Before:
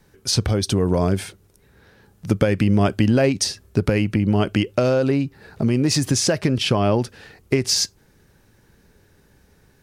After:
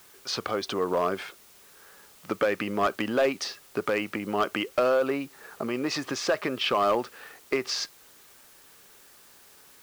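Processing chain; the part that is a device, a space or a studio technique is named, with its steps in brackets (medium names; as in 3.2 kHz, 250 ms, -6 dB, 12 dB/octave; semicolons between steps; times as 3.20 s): drive-through speaker (band-pass 460–3200 Hz; peaking EQ 1.2 kHz +10 dB 0.31 oct; hard clipper -15.5 dBFS, distortion -16 dB; white noise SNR 25 dB); trim -1.5 dB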